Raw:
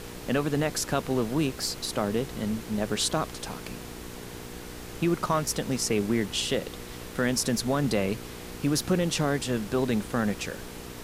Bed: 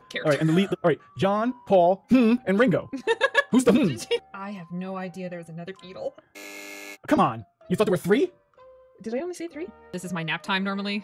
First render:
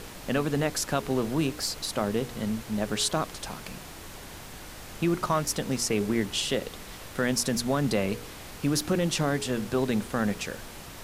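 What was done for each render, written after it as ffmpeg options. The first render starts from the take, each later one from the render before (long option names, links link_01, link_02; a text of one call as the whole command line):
ffmpeg -i in.wav -af "bandreject=frequency=60:width_type=h:width=4,bandreject=frequency=120:width_type=h:width=4,bandreject=frequency=180:width_type=h:width=4,bandreject=frequency=240:width_type=h:width=4,bandreject=frequency=300:width_type=h:width=4,bandreject=frequency=360:width_type=h:width=4,bandreject=frequency=420:width_type=h:width=4,bandreject=frequency=480:width_type=h:width=4" out.wav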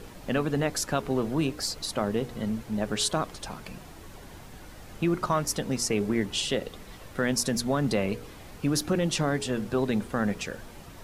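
ffmpeg -i in.wav -af "afftdn=noise_reduction=8:noise_floor=-43" out.wav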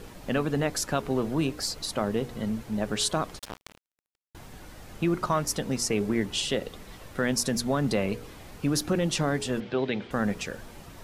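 ffmpeg -i in.wav -filter_complex "[0:a]asettb=1/sr,asplit=3[link_01][link_02][link_03];[link_01]atrim=end=3.394[link_04];[link_02]atrim=start=3.39:end=4.35,asetpts=PTS-STARTPTS,afade=type=in:duration=0.004:curve=qsin,afade=type=out:start_time=0.956:duration=0.004:curve=qsin,acrusher=bits=4:mix=0:aa=0.5[link_05];[link_03]atrim=start=4.346[link_06];[link_04][link_05]acrossfade=duration=0.004:curve1=hsin:curve2=qsin[link_07];[link_07][link_06]acrossfade=duration=0.004:curve1=qsin:curve2=hsin,asettb=1/sr,asplit=3[link_08][link_09][link_10];[link_08]atrim=end=9.604[link_11];[link_09]atrim=start=9.6:end=10.11,asetpts=PTS-STARTPTS,afade=type=in:duration=0.004:curve=qsin,afade=type=out:start_time=0.506:duration=0.004:curve=qsin,highpass=140,equalizer=frequency=220:width_type=q:width=4:gain=-6,equalizer=frequency=1100:width_type=q:width=4:gain=-5,equalizer=frequency=2200:width_type=q:width=4:gain=6,equalizer=frequency=3200:width_type=q:width=4:gain=7,lowpass=frequency=4700:width=0.5412,lowpass=frequency=4700:width=1.3066[link_12];[link_10]atrim=start=10.106[link_13];[link_11][link_12]acrossfade=duration=0.004:curve1=hsin:curve2=qsin[link_14];[link_14][link_13]acrossfade=duration=0.004:curve1=qsin:curve2=hsin" out.wav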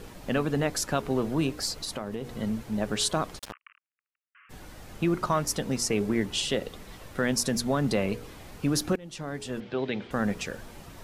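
ffmpeg -i in.wav -filter_complex "[0:a]asettb=1/sr,asplit=3[link_01][link_02][link_03];[link_01]atrim=end=1.724[link_04];[link_02]atrim=start=1.72:end=2.38,asetpts=PTS-STARTPTS,afade=type=in:duration=0.004:curve=qsin,afade=type=out:start_time=0.656:duration=0.004:curve=qsin,acompressor=threshold=-29dB:ratio=6:attack=3.2:release=140:knee=1:detection=peak[link_05];[link_03]atrim=start=2.376[link_06];[link_04][link_05]acrossfade=duration=0.004:curve1=hsin:curve2=qsin[link_07];[link_07][link_06]acrossfade=duration=0.004:curve1=qsin:curve2=hsin,asplit=3[link_08][link_09][link_10];[link_08]afade=type=out:start_time=3.51:duration=0.02[link_11];[link_09]asuperpass=centerf=1800:order=20:qfactor=1,afade=type=in:start_time=3.51:duration=0.02,afade=type=out:start_time=4.49:duration=0.02[link_12];[link_10]afade=type=in:start_time=4.49:duration=0.02[link_13];[link_11][link_12][link_13]amix=inputs=3:normalize=0,asplit=2[link_14][link_15];[link_14]atrim=end=8.96,asetpts=PTS-STARTPTS,afade=type=out:start_time=8.956:duration=0.004:curve=hsin:silence=0.0668344[link_16];[link_15]atrim=start=8.96,asetpts=PTS-STARTPTS,afade=type=in:duration=1.6:curve=qsin:silence=0.0668344[link_17];[link_16][link_17]concat=n=2:v=0:a=1" out.wav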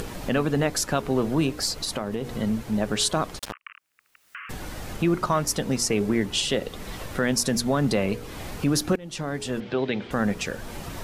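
ffmpeg -i in.wav -filter_complex "[0:a]asplit=2[link_01][link_02];[link_02]alimiter=limit=-21dB:level=0:latency=1:release=209,volume=-2dB[link_03];[link_01][link_03]amix=inputs=2:normalize=0,acompressor=mode=upward:threshold=-27dB:ratio=2.5" out.wav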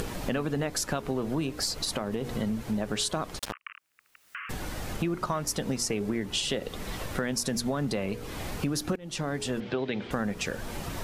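ffmpeg -i in.wav -af "acompressor=threshold=-26dB:ratio=6" out.wav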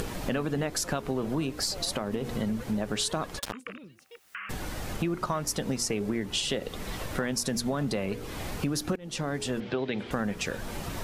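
ffmpeg -i in.wav -i bed.wav -filter_complex "[1:a]volume=-26.5dB[link_01];[0:a][link_01]amix=inputs=2:normalize=0" out.wav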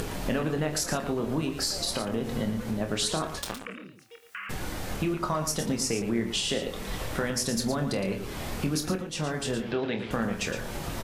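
ffmpeg -i in.wav -filter_complex "[0:a]asplit=2[link_01][link_02];[link_02]adelay=26,volume=-7dB[link_03];[link_01][link_03]amix=inputs=2:normalize=0,aecho=1:1:48|114:0.188|0.355" out.wav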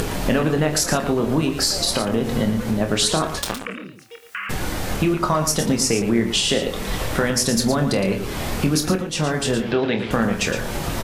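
ffmpeg -i in.wav -af "volume=9dB" out.wav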